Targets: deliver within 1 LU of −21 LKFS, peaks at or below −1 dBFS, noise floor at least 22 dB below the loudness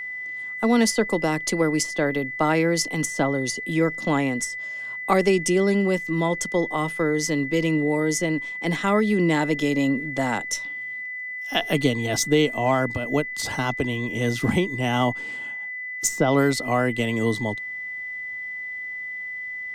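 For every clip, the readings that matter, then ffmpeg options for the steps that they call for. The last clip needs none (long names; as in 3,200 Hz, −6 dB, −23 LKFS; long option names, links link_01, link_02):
interfering tone 2,000 Hz; level of the tone −30 dBFS; integrated loudness −23.5 LKFS; sample peak −6.5 dBFS; target loudness −21.0 LKFS
→ -af "bandreject=frequency=2000:width=30"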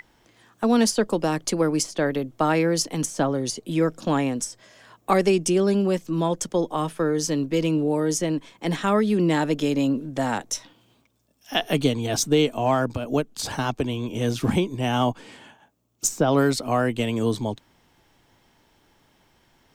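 interfering tone none found; integrated loudness −23.5 LKFS; sample peak −7.0 dBFS; target loudness −21.0 LKFS
→ -af "volume=2.5dB"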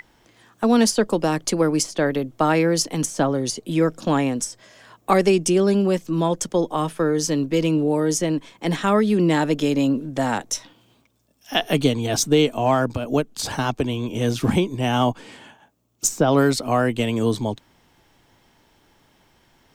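integrated loudness −21.0 LKFS; sample peak −4.5 dBFS; background noise floor −60 dBFS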